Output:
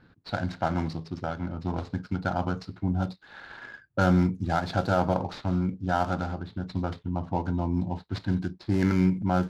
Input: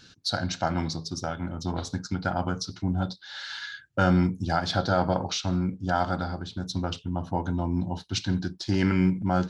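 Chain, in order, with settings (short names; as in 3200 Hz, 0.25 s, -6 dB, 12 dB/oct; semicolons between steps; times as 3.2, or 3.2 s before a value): median filter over 15 samples; low-pass opened by the level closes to 2400 Hz, open at -19 dBFS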